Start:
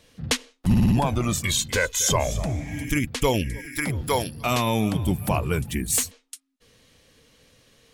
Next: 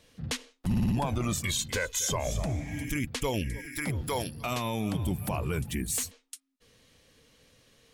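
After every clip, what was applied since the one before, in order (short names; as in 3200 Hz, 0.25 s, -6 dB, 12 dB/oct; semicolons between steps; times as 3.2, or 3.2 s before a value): limiter -16 dBFS, peak gain reduction 6.5 dB; gain -4 dB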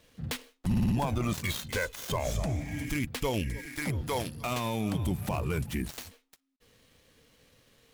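switching dead time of 0.077 ms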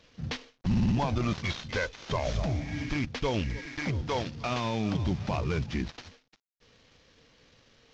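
CVSD 32 kbps; gain +1.5 dB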